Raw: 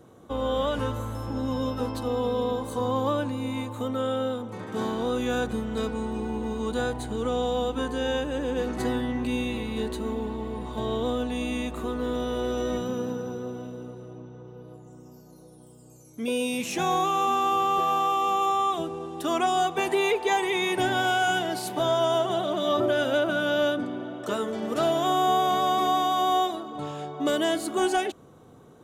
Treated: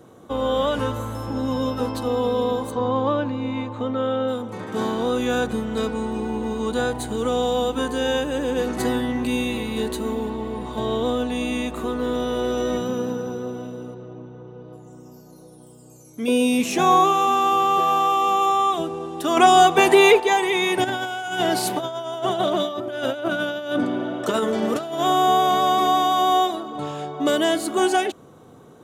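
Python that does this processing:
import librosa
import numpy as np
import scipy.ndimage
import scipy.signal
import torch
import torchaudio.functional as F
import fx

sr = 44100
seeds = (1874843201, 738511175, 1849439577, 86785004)

y = fx.air_absorb(x, sr, metres=170.0, at=(2.7, 4.27), fade=0.02)
y = fx.high_shelf(y, sr, hz=7800.0, db=7.5, at=(6.94, 10.3))
y = fx.air_absorb(y, sr, metres=120.0, at=(13.94, 14.73))
y = fx.small_body(y, sr, hz=(260.0, 410.0, 680.0, 1100.0), ring_ms=45, db=7, at=(16.28, 17.13))
y = fx.over_compress(y, sr, threshold_db=-28.0, ratio=-0.5, at=(20.84, 25.01))
y = fx.edit(y, sr, fx.clip_gain(start_s=19.37, length_s=0.83, db=6.0), tone=tone)
y = fx.low_shelf(y, sr, hz=61.0, db=-10.5)
y = y * librosa.db_to_amplitude(5.0)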